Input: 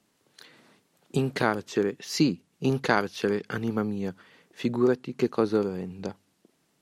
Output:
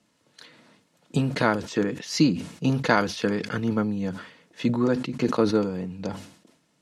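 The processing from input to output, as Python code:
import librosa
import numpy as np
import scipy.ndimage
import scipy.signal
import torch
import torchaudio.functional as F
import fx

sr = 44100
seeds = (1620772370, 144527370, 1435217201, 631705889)

y = scipy.signal.sosfilt(scipy.signal.butter(2, 9300.0, 'lowpass', fs=sr, output='sos'), x)
y = fx.notch_comb(y, sr, f0_hz=390.0)
y = fx.sustainer(y, sr, db_per_s=100.0)
y = y * 10.0 ** (3.5 / 20.0)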